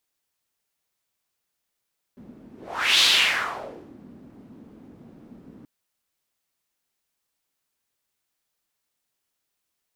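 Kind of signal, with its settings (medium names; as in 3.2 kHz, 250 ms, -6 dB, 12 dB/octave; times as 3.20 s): whoosh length 3.48 s, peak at 0.84 s, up 0.52 s, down 1.04 s, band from 240 Hz, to 3.6 kHz, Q 3.2, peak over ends 29.5 dB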